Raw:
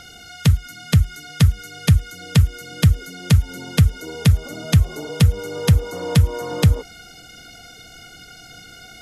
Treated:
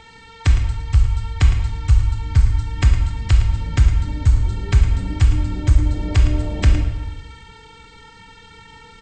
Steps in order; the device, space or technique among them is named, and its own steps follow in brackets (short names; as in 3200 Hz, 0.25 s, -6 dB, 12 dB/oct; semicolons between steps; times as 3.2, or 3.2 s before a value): monster voice (pitch shift -8 st; low shelf 230 Hz +4 dB; echo 0.11 s -12 dB; reverb RT60 1.1 s, pre-delay 16 ms, DRR 3.5 dB); gain -3.5 dB